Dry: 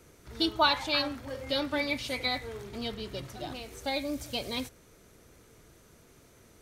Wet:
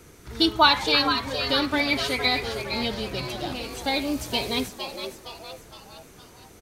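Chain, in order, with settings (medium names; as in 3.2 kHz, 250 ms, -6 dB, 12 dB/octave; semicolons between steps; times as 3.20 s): peaking EQ 580 Hz -5.5 dB 0.31 oct; frequency-shifting echo 463 ms, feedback 48%, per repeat +130 Hz, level -8 dB; trim +7.5 dB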